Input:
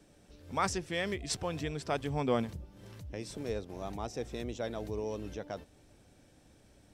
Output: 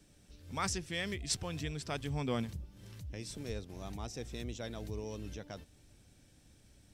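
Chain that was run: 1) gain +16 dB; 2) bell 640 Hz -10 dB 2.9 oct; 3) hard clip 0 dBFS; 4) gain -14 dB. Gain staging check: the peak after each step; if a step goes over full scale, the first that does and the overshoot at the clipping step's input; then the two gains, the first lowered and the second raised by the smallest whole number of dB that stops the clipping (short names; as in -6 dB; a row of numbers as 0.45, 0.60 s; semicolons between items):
-0.5, -5.0, -5.0, -19.0 dBFS; no overload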